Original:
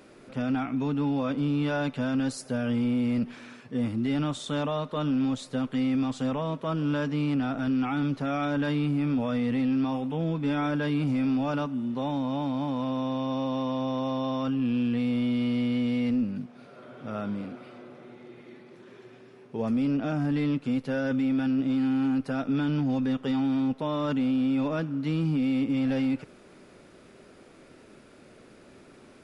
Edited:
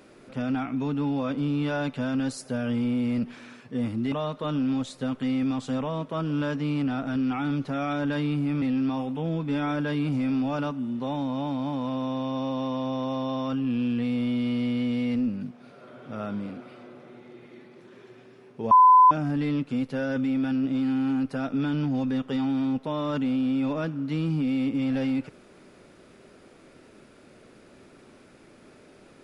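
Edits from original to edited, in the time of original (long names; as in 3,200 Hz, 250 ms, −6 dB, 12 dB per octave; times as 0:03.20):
0:04.12–0:04.64: remove
0:09.14–0:09.57: remove
0:19.66–0:20.06: beep over 1,010 Hz −11 dBFS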